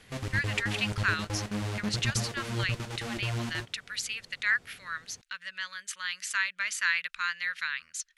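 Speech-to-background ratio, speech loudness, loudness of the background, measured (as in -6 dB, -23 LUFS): 2.5 dB, -32.0 LUFS, -34.5 LUFS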